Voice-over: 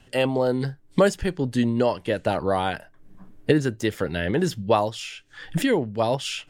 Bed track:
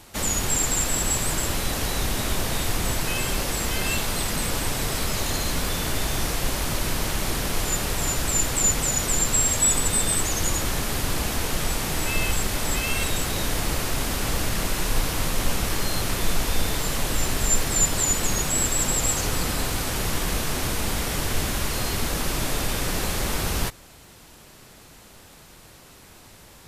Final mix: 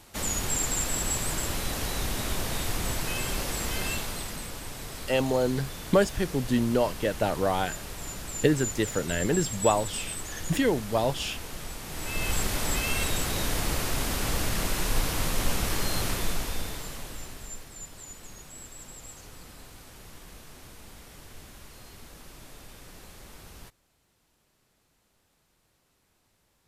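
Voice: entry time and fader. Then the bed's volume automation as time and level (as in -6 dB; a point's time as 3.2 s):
4.95 s, -3.0 dB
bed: 3.83 s -5 dB
4.55 s -13 dB
11.83 s -13 dB
12.37 s -3 dB
16.06 s -3 dB
17.73 s -22 dB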